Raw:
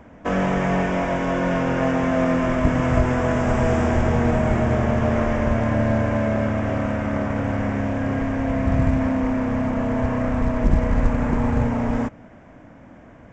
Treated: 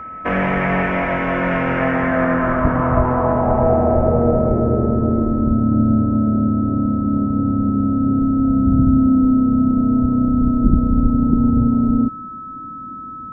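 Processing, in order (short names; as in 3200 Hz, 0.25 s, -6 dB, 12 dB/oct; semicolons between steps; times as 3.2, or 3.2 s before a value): low-pass sweep 2200 Hz -> 270 Hz, 1.77–5.61; whine 1300 Hz -31 dBFS; gain +1.5 dB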